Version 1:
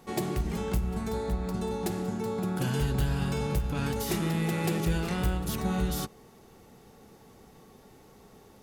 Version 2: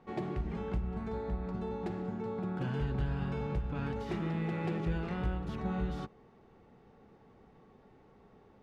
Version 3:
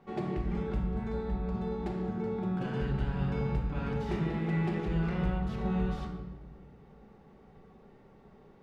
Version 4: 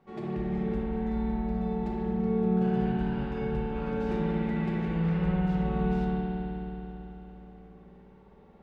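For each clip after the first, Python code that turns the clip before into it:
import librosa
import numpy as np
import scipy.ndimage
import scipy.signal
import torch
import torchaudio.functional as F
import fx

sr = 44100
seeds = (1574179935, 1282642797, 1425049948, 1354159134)

y1 = scipy.signal.sosfilt(scipy.signal.butter(2, 2300.0, 'lowpass', fs=sr, output='sos'), x)
y1 = F.gain(torch.from_numpy(y1), -5.5).numpy()
y2 = fx.room_shoebox(y1, sr, seeds[0], volume_m3=680.0, walls='mixed', distance_m=1.2)
y3 = fx.rev_spring(y2, sr, rt60_s=3.6, pass_ms=(54,), chirp_ms=20, drr_db=-3.5)
y3 = F.gain(torch.from_numpy(y3), -4.5).numpy()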